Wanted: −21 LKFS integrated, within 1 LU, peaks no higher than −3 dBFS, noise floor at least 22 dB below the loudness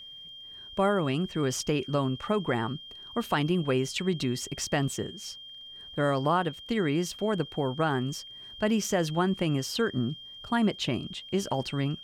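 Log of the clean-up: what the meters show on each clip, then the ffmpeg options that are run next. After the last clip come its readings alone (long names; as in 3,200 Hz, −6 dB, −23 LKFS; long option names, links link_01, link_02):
interfering tone 3,200 Hz; level of the tone −43 dBFS; integrated loudness −29.0 LKFS; sample peak −12.5 dBFS; target loudness −21.0 LKFS
→ -af "bandreject=frequency=3200:width=30"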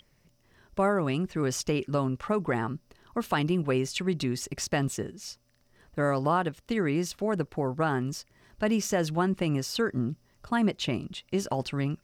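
interfering tone none found; integrated loudness −29.0 LKFS; sample peak −13.0 dBFS; target loudness −21.0 LKFS
→ -af "volume=8dB"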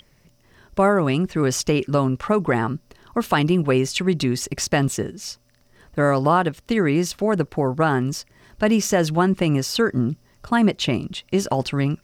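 integrated loudness −21.0 LKFS; sample peak −5.0 dBFS; background noise floor −59 dBFS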